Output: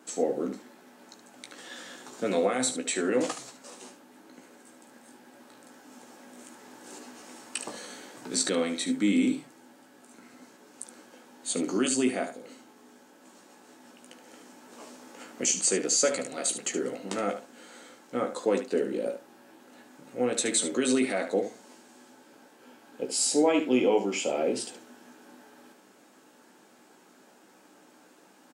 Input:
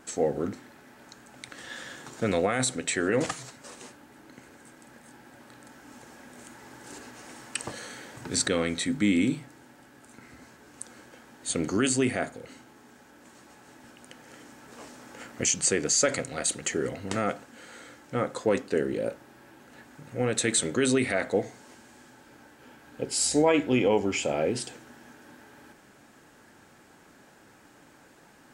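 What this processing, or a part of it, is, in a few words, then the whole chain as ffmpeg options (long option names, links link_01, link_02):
slapback doubling: -filter_complex "[0:a]highpass=frequency=200:width=0.5412,highpass=frequency=200:width=1.3066,equalizer=frequency=1800:width_type=o:width=0.8:gain=-5.5,asplit=3[link_01][link_02][link_03];[link_02]adelay=16,volume=-6dB[link_04];[link_03]adelay=73,volume=-10dB[link_05];[link_01][link_04][link_05]amix=inputs=3:normalize=0,volume=-1.5dB"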